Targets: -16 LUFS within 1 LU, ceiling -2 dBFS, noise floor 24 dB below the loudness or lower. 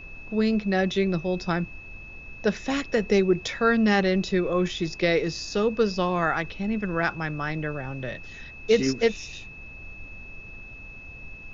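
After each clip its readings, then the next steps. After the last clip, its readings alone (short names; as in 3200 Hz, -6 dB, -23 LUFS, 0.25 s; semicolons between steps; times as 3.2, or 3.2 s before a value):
steady tone 2600 Hz; tone level -42 dBFS; noise floor -43 dBFS; noise floor target -49 dBFS; loudness -25.0 LUFS; peak -7.5 dBFS; loudness target -16.0 LUFS
-> notch 2600 Hz, Q 30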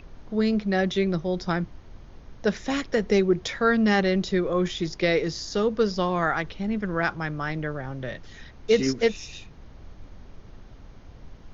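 steady tone none; noise floor -47 dBFS; noise floor target -49 dBFS
-> noise print and reduce 6 dB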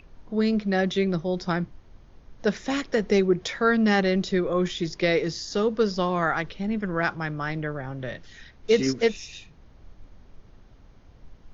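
noise floor -52 dBFS; loudness -25.0 LUFS; peak -8.0 dBFS; loudness target -16.0 LUFS
-> gain +9 dB; limiter -2 dBFS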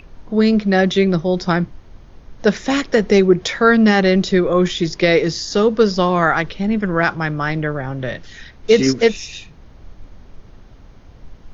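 loudness -16.5 LUFS; peak -2.0 dBFS; noise floor -43 dBFS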